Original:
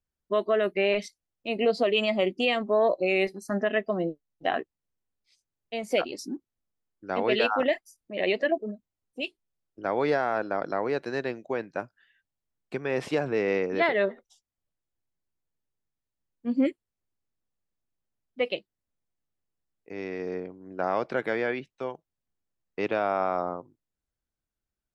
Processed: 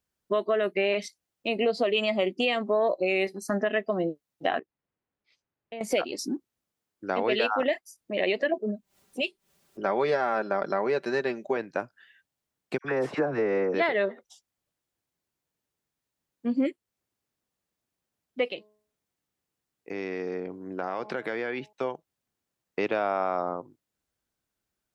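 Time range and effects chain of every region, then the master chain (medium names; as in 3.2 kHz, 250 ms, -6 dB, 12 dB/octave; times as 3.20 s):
4.59–5.81 s: low-pass 2.3 kHz + compression 3:1, threshold -46 dBFS
8.53–11.57 s: comb 5.1 ms, depth 58% + upward compressor, threshold -47 dBFS
12.78–13.74 s: resonant high shelf 2 kHz -8 dB, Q 1.5 + phase dispersion lows, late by 66 ms, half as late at 1.4 kHz
18.46–21.73 s: peaking EQ 610 Hz -4 dB 0.22 oct + de-hum 211.5 Hz, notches 5 + compression 2:1, threshold -37 dBFS
whole clip: high-pass 150 Hz 6 dB/octave; compression 2:1, threshold -36 dBFS; trim +7.5 dB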